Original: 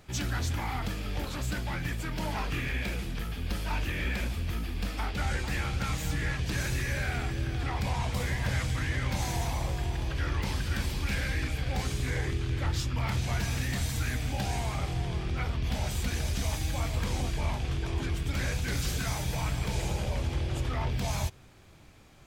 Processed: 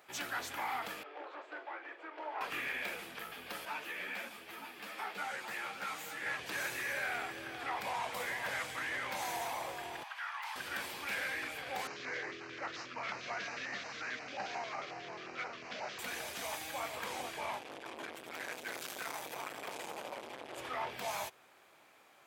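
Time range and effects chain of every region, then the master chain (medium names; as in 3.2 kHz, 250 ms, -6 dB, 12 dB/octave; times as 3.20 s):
1.03–2.41 s: elliptic high-pass 310 Hz + tape spacing loss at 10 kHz 39 dB + doubling 43 ms -12.5 dB
3.65–6.26 s: high-pass 110 Hz 24 dB/octave + delay 912 ms -12.5 dB + three-phase chorus
10.03–10.56 s: steep high-pass 790 Hz 48 dB/octave + tilt EQ -2 dB/octave
11.87–15.99 s: CVSD coder 32 kbps + high-pass 130 Hz + LFO notch square 5.6 Hz 860–3400 Hz
17.59–20.58 s: high-pass 91 Hz + transformer saturation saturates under 700 Hz
whole clip: high-pass 620 Hz 12 dB/octave; peaking EQ 5.6 kHz -8.5 dB 1.8 oct; trim +1 dB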